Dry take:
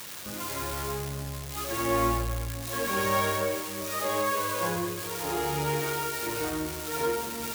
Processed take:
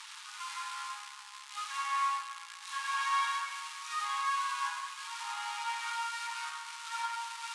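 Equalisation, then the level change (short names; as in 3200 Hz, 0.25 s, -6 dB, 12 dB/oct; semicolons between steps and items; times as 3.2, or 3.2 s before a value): rippled Chebyshev high-pass 860 Hz, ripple 3 dB; steep low-pass 10000 Hz 36 dB/oct; high shelf 5100 Hz -8 dB; 0.0 dB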